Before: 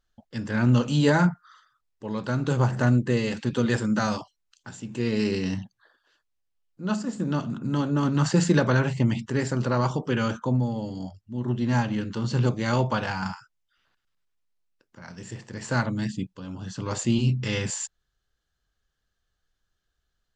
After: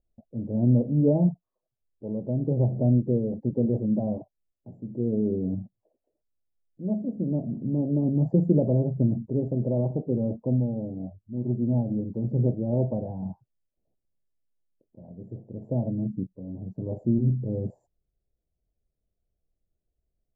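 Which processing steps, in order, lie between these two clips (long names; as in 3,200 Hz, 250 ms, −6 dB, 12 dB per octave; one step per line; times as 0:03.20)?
elliptic low-pass filter 660 Hz, stop band 50 dB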